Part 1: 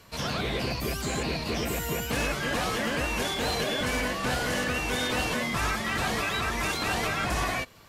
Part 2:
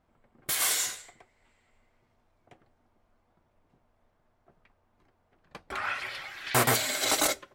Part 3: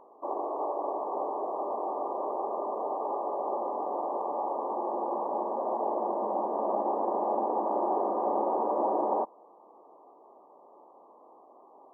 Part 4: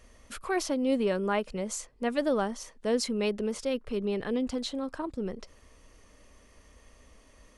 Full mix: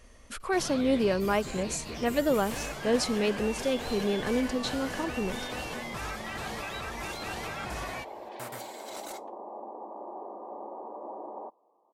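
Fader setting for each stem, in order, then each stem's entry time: -9.0 dB, -18.5 dB, -13.0 dB, +1.5 dB; 0.40 s, 1.85 s, 2.25 s, 0.00 s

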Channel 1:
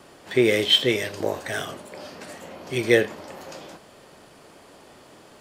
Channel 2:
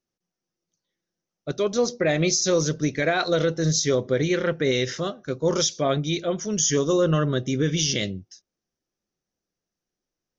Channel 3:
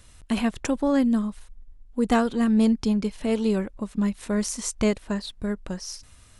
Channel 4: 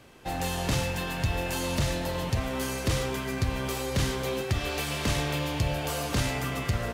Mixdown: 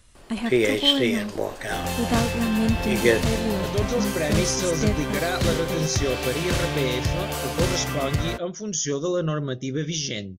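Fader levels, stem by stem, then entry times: -1.5 dB, -4.0 dB, -3.5 dB, +2.5 dB; 0.15 s, 2.15 s, 0.00 s, 1.45 s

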